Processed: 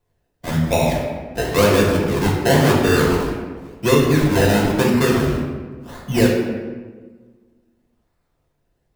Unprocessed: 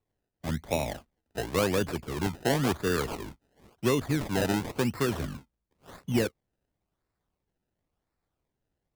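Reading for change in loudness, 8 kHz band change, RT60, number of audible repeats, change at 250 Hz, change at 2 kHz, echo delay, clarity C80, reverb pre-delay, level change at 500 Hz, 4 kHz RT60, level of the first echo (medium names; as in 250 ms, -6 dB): +12.0 dB, +10.5 dB, 1.4 s, no echo, +12.5 dB, +12.5 dB, no echo, 4.0 dB, 3 ms, +13.0 dB, 0.85 s, no echo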